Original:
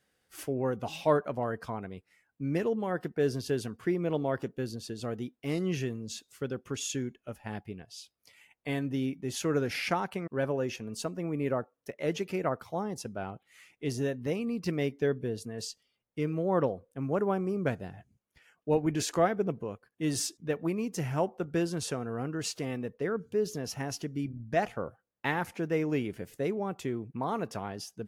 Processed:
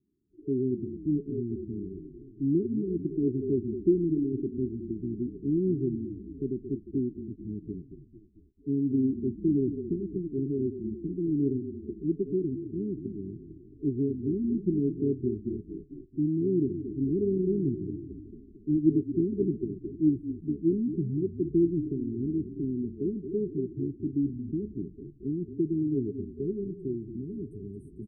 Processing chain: frequency-shifting echo 0.223 s, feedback 57%, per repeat -34 Hz, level -11 dB; FFT band-reject 430–8000 Hz; low-pass sweep 330 Hz -> 3200 Hz, 25.49–27.65

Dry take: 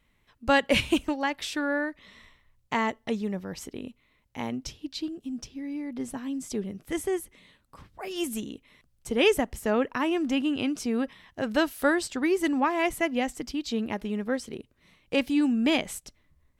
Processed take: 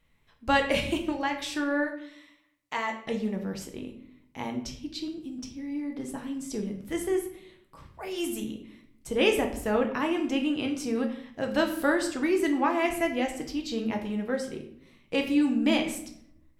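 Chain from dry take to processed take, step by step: 0.72–1.25 compressor 2.5:1, threshold -24 dBFS, peak gain reduction 4.5 dB; 1.86–3.04 HPF 1500 Hz -> 640 Hz 6 dB/oct; shoebox room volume 130 m³, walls mixed, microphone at 0.63 m; gain -2.5 dB

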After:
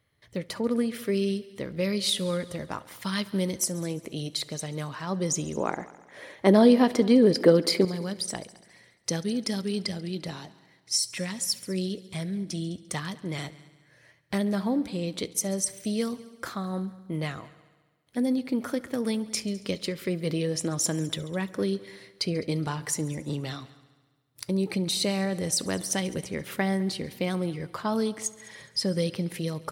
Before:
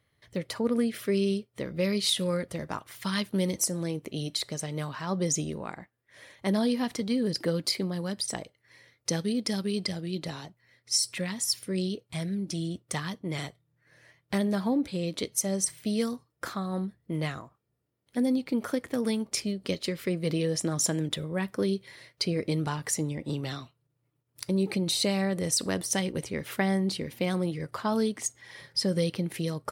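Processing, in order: 5.57–7.85 EQ curve 110 Hz 0 dB, 370 Hz +13 dB, 6100 Hz +1 dB; multi-head echo 69 ms, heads all three, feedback 47%, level -23.5 dB

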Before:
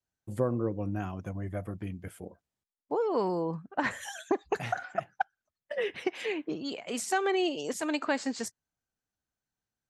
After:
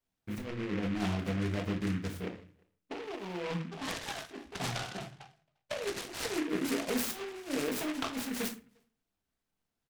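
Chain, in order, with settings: 3.63–6.03 Chebyshev low-pass 3000 Hz, order 4; negative-ratio compressor -34 dBFS, ratio -0.5; speakerphone echo 0.35 s, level -30 dB; shoebox room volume 200 m³, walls furnished, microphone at 1.6 m; noise-modulated delay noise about 1700 Hz, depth 0.13 ms; gain -3 dB

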